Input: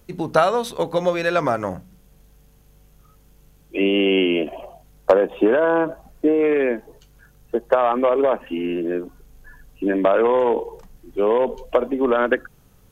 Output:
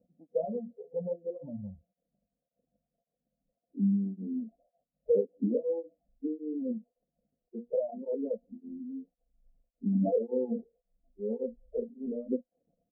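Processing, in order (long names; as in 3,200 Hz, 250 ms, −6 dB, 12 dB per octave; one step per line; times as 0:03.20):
spike at every zero crossing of −12 dBFS
parametric band 380 Hz −14.5 dB 0.76 octaves
mains-hum notches 60/120/180/240/300/360/420/480/540 Hz
noise reduction from a noise print of the clip's start 27 dB
in parallel at −9.5 dB: soft clipping −21 dBFS, distortion −11 dB
on the sum: comb filter 3.9 ms, depth 41%
formants moved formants −3 semitones
Chebyshev low-pass with heavy ripple 710 Hz, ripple 9 dB
through-zero flanger with one copy inverted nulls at 1.8 Hz, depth 2.8 ms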